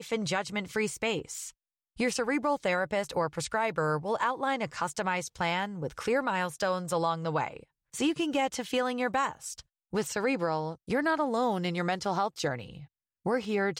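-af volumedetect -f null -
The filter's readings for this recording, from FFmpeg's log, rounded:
mean_volume: -30.9 dB
max_volume: -15.4 dB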